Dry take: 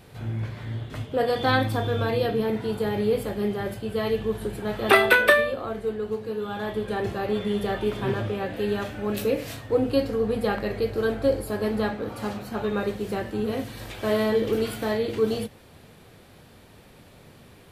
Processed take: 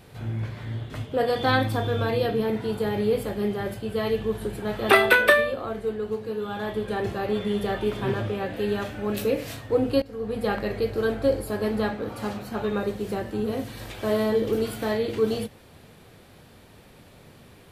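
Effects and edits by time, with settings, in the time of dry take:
10.02–10.52 fade in, from -19 dB
12.77–14.8 dynamic EQ 2300 Hz, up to -4 dB, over -40 dBFS, Q 0.78

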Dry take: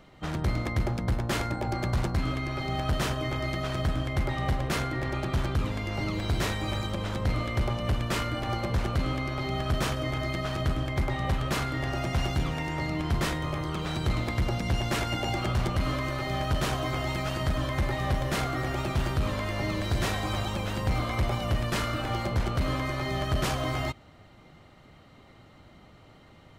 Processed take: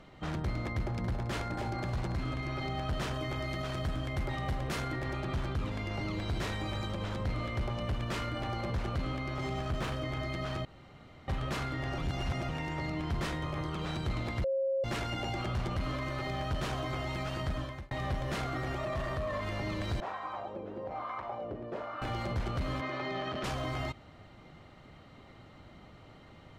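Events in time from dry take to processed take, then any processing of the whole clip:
0.66–2.48 split-band echo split 350 Hz, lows 0.196 s, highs 0.279 s, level -12.5 dB
3.14–5.2 high shelf 7400 Hz +7.5 dB
9.35–9.93 running maximum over 5 samples
10.65–11.28 room tone
11.98–12.49 reverse
14.44–14.84 bleep 539 Hz -16.5 dBFS
17.21–17.91 fade out
18.78–19.41 small resonant body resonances 630/1100/1800 Hz, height 16 dB
20–22.02 wah 1.1 Hz 380–1100 Hz, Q 2.5
22.81–23.44 BPF 220–4100 Hz
whole clip: high shelf 9300 Hz -11 dB; limiter -27.5 dBFS

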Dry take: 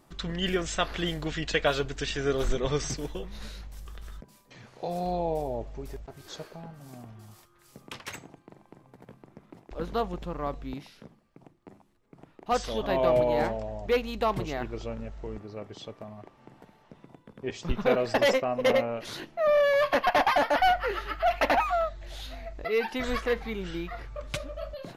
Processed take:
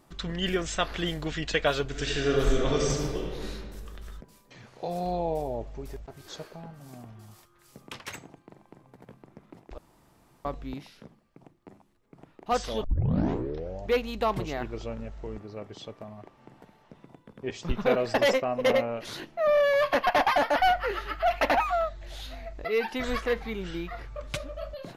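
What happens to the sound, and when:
1.87–3.49 reverb throw, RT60 1.8 s, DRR -0.5 dB
9.78–10.45 room tone
12.84 tape start 1.02 s

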